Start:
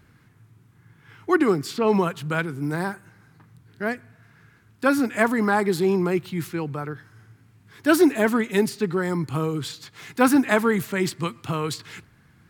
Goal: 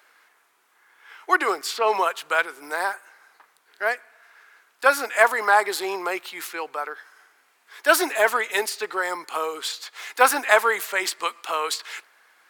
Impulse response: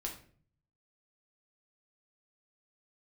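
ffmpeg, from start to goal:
-af "highpass=f=560:w=0.5412,highpass=f=560:w=1.3066,volume=1.88"

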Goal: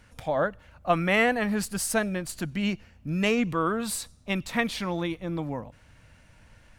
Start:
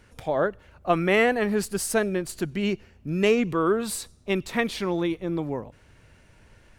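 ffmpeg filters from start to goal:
-af "equalizer=f=390:w=3.9:g=-12.5"

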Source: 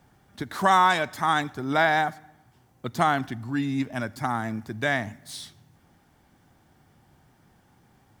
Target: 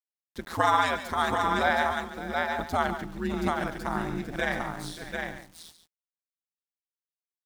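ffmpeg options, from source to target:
-filter_complex "[0:a]asplit=2[s0][s1];[s1]aecho=0:1:146|625|804:0.15|0.178|0.596[s2];[s0][s2]amix=inputs=2:normalize=0,atempo=1.1,aeval=exprs='val(0)*sin(2*PI*83*n/s)':c=same,aeval=exprs='val(0)*gte(abs(val(0)),0.00473)':c=same,asplit=2[s3][s4];[s4]aecho=0:1:142:0.266[s5];[s3][s5]amix=inputs=2:normalize=0,volume=0.891"

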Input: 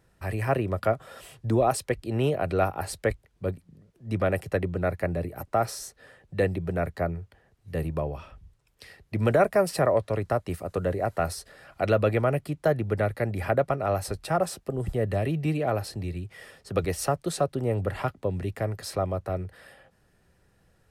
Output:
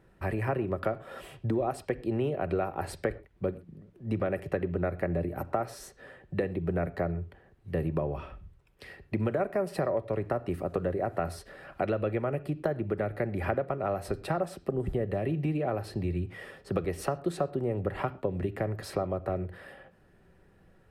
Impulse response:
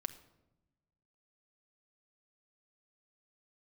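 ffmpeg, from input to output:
-filter_complex "[0:a]equalizer=f=330:w=1.5:g=4.5,acompressor=threshold=0.0355:ratio=5,asplit=2[s0][s1];[1:a]atrim=start_sample=2205,afade=t=out:st=0.19:d=0.01,atrim=end_sample=8820,lowpass=3400[s2];[s1][s2]afir=irnorm=-1:irlink=0,volume=2[s3];[s0][s3]amix=inputs=2:normalize=0,volume=0.501"

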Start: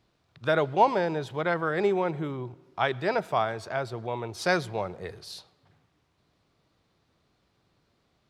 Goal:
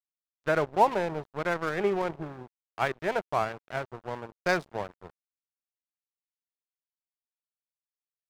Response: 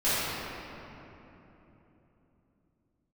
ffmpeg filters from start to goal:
-af "afwtdn=0.0126,aeval=exprs='sgn(val(0))*max(abs(val(0))-0.0178,0)':c=same"

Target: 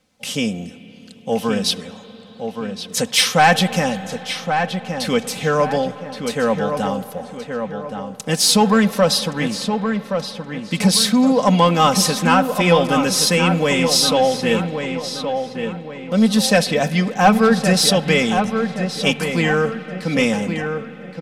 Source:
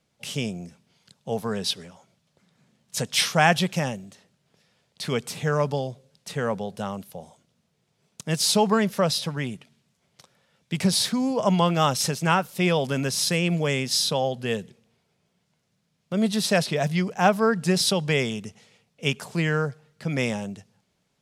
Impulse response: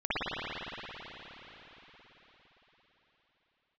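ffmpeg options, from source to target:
-filter_complex "[0:a]aecho=1:1:3.9:0.64,acontrast=82,asplit=2[s0][s1];[s1]adelay=1122,lowpass=f=2800:p=1,volume=0.473,asplit=2[s2][s3];[s3]adelay=1122,lowpass=f=2800:p=1,volume=0.41,asplit=2[s4][s5];[s5]adelay=1122,lowpass=f=2800:p=1,volume=0.41,asplit=2[s6][s7];[s7]adelay=1122,lowpass=f=2800:p=1,volume=0.41,asplit=2[s8][s9];[s9]adelay=1122,lowpass=f=2800:p=1,volume=0.41[s10];[s0][s2][s4][s6][s8][s10]amix=inputs=6:normalize=0,asplit=2[s11][s12];[1:a]atrim=start_sample=2205[s13];[s12][s13]afir=irnorm=-1:irlink=0,volume=0.0422[s14];[s11][s14]amix=inputs=2:normalize=0,volume=0.891"

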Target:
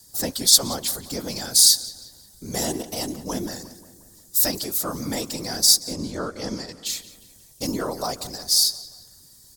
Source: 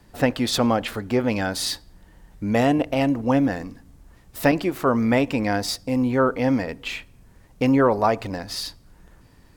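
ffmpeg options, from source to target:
-filter_complex "[0:a]asettb=1/sr,asplit=3[s0][s1][s2];[s0]atrim=end=5.804[s3];[s1]atrim=start=5.8:end=6.86,asetpts=PTS-STARTPTS,afade=t=in:d=0.004:c=qsin,afade=t=out:st=1.056:d=0.004:c=qsin,lowpass=6800[s4];[s2]atrim=start=6.856[s5];[s3][s4]acrossfade=d=0.004:c1=hsin:c2=qsin[s6];[s6][s5]acrossfade=d=0.004:c1=qsin:c2=hsin,afftfilt=real='hypot(re,im)*cos(2*PI*random(0))':imag='hypot(re,im)*sin(2*PI*random(1))':win_size=512:overlap=0.75,aexciter=amount=10.8:drive=8.7:freq=4000,asplit=2[s7][s8];[s8]adelay=178,lowpass=f=4100:p=1,volume=0.168,asplit=2[s9][s10];[s10]adelay=178,lowpass=f=4100:p=1,volume=0.55,asplit=2[s11][s12];[s12]adelay=178,lowpass=f=4100:p=1,volume=0.55,asplit=2[s13][s14];[s14]adelay=178,lowpass=f=4100:p=1,volume=0.55,asplit=2[s15][s16];[s16]adelay=178,lowpass=f=4100:p=1,volume=0.55[s17];[s9][s11][s13][s15][s17]amix=inputs=5:normalize=0[s18];[s7][s18]amix=inputs=2:normalize=0,volume=0.631"

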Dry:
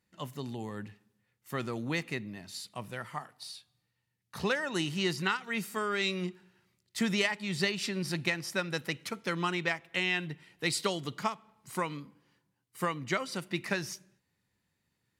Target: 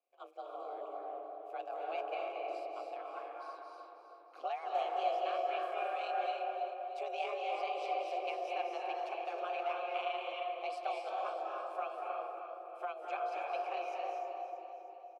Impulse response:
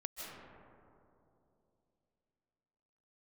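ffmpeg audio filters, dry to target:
-filter_complex "[0:a]afreqshift=270,aeval=exprs='val(0)*sin(2*PI*78*n/s)':c=same,asplit=2[s0][s1];[s1]alimiter=level_in=1.12:limit=0.0631:level=0:latency=1,volume=0.891,volume=0.891[s2];[s0][s2]amix=inputs=2:normalize=0,asplit=3[s3][s4][s5];[s3]bandpass=f=730:t=q:w=8,volume=1[s6];[s4]bandpass=f=1090:t=q:w=8,volume=0.501[s7];[s5]bandpass=f=2440:t=q:w=8,volume=0.355[s8];[s6][s7][s8]amix=inputs=3:normalize=0,aecho=1:1:315|630|945|1260|1575:0.316|0.158|0.0791|0.0395|0.0198[s9];[1:a]atrim=start_sample=2205,asetrate=30429,aresample=44100[s10];[s9][s10]afir=irnorm=-1:irlink=0,volume=1.12"

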